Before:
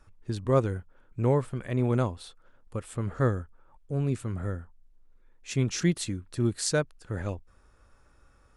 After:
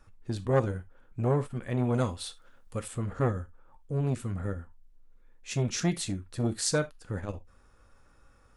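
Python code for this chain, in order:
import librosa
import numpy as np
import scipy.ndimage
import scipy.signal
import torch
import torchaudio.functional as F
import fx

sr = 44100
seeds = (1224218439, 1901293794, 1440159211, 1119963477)

y = fx.high_shelf(x, sr, hz=2100.0, db=9.0, at=(1.94, 2.88))
y = fx.rev_gated(y, sr, seeds[0], gate_ms=100, shape='falling', drr_db=10.0)
y = fx.transformer_sat(y, sr, knee_hz=620.0)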